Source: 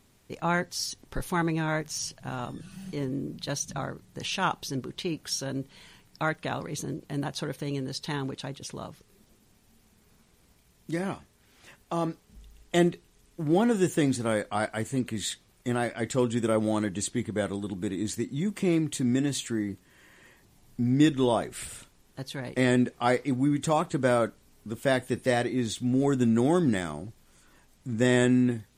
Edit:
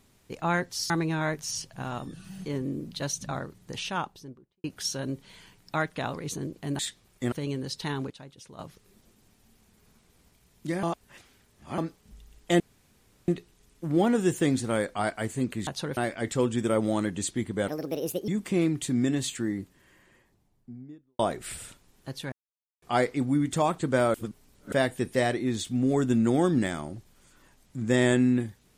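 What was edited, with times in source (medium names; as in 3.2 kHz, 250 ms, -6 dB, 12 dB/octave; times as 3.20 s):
0.90–1.37 s: delete
4.09–5.11 s: studio fade out
7.26–7.56 s: swap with 15.23–15.76 s
8.34–8.83 s: gain -10 dB
11.07–12.02 s: reverse
12.84 s: insert room tone 0.68 s
17.47–18.39 s: speed 153%
19.48–21.30 s: studio fade out
22.43–22.93 s: mute
24.25–24.83 s: reverse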